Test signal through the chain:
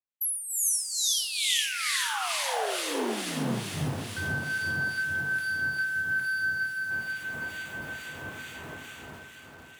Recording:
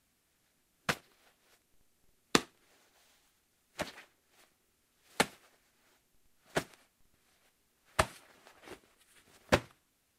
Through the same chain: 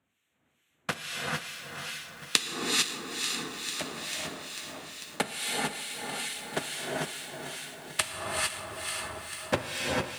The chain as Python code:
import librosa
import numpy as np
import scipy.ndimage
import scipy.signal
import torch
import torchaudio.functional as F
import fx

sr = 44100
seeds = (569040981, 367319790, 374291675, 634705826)

p1 = fx.wiener(x, sr, points=9)
p2 = fx.peak_eq(p1, sr, hz=10000.0, db=11.0, octaves=1.3)
p3 = p2 + fx.echo_diffused(p2, sr, ms=572, feedback_pct=63, wet_db=-7.0, dry=0)
p4 = fx.rev_gated(p3, sr, seeds[0], gate_ms=480, shape='rising', drr_db=-3.5)
p5 = fx.rider(p4, sr, range_db=3, speed_s=0.5)
p6 = p4 + (p5 * 10.0 ** (0.0 / 20.0))
p7 = scipy.signal.sosfilt(scipy.signal.butter(4, 83.0, 'highpass', fs=sr, output='sos'), p6)
p8 = fx.peak_eq(p7, sr, hz=3100.0, db=7.5, octaves=1.2)
p9 = fx.harmonic_tremolo(p8, sr, hz=2.3, depth_pct=70, crossover_hz=1600.0)
p10 = fx.echo_crushed(p9, sr, ms=445, feedback_pct=80, bits=6, wet_db=-12.5)
y = p10 * 10.0 ** (-6.0 / 20.0)